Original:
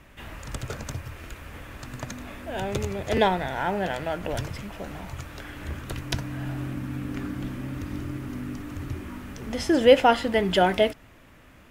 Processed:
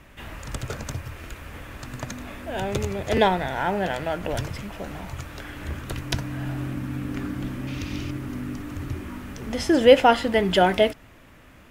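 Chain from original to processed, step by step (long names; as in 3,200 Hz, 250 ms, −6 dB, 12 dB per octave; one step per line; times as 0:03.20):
0:07.67–0:08.11: flat-topped bell 3,800 Hz +10 dB
level +2 dB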